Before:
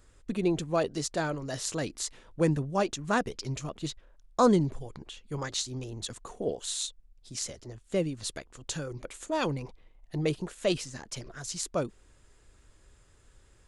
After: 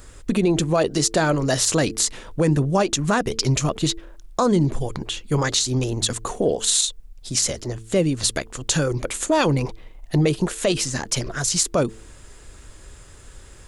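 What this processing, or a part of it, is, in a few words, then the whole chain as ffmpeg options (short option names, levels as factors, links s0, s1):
loud club master: -af "acompressor=threshold=0.0316:ratio=3,asoftclip=type=hard:threshold=0.15,alimiter=level_in=16.8:limit=0.891:release=50:level=0:latency=1,highshelf=f=7800:g=5,bandreject=f=111.2:t=h:w=4,bandreject=f=222.4:t=h:w=4,bandreject=f=333.6:t=h:w=4,bandreject=f=444.8:t=h:w=4,volume=0.355"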